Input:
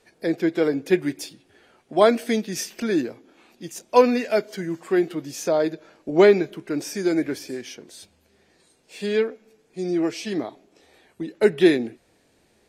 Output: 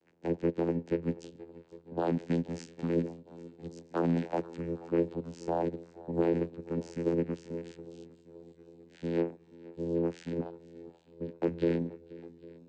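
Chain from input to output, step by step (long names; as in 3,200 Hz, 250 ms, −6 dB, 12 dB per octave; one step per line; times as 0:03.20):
brickwall limiter −12 dBFS, peak gain reduction 9 dB
channel vocoder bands 8, saw 84.5 Hz
feedback echo with a long and a short gap by turns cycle 805 ms, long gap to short 1.5 to 1, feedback 50%, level −20 dB
level −7 dB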